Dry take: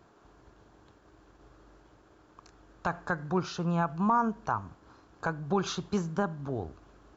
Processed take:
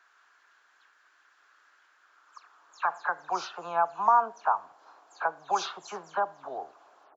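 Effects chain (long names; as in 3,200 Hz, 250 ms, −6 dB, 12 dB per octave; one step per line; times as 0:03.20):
every frequency bin delayed by itself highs early, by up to 134 ms
high-pass filter sweep 1,600 Hz → 750 Hz, 0:01.93–0:03.32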